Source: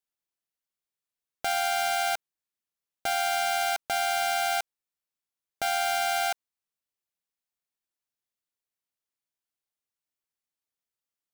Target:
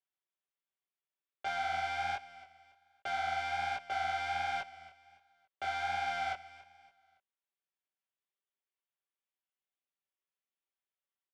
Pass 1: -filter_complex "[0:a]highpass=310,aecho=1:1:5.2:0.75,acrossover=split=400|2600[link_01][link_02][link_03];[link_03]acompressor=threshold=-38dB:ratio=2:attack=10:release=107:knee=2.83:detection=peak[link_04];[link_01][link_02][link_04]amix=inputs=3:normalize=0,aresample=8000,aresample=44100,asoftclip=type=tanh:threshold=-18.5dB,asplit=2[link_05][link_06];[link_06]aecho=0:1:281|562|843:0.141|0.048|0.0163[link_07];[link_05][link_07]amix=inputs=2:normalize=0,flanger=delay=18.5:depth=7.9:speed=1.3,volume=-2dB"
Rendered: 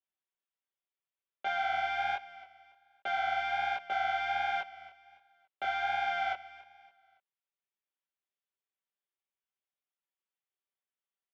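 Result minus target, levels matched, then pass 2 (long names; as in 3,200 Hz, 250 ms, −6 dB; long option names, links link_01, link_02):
soft clipping: distortion −9 dB
-filter_complex "[0:a]highpass=310,aecho=1:1:5.2:0.75,acrossover=split=400|2600[link_01][link_02][link_03];[link_03]acompressor=threshold=-38dB:ratio=2:attack=10:release=107:knee=2.83:detection=peak[link_04];[link_01][link_02][link_04]amix=inputs=3:normalize=0,aresample=8000,aresample=44100,asoftclip=type=tanh:threshold=-26dB,asplit=2[link_05][link_06];[link_06]aecho=0:1:281|562|843:0.141|0.048|0.0163[link_07];[link_05][link_07]amix=inputs=2:normalize=0,flanger=delay=18.5:depth=7.9:speed=1.3,volume=-2dB"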